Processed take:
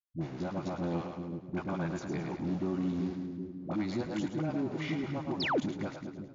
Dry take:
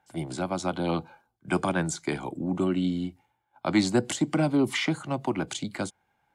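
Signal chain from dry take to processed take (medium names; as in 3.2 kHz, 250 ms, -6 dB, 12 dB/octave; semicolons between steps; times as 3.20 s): send-on-delta sampling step -34.5 dBFS; treble shelf 5.7 kHz -8 dB; band-stop 3.1 kHz, Q 16; two-band feedback delay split 440 Hz, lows 381 ms, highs 107 ms, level -8 dB; peak limiter -21 dBFS, peak gain reduction 8 dB; painted sound fall, 5.33–5.59 s, 210–5600 Hz -24 dBFS; waveshaping leveller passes 1; high-pass 91 Hz; tilt EQ -1.5 dB/octave; phase dispersion highs, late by 68 ms, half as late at 480 Hz; trim -9 dB; MP3 56 kbps 16 kHz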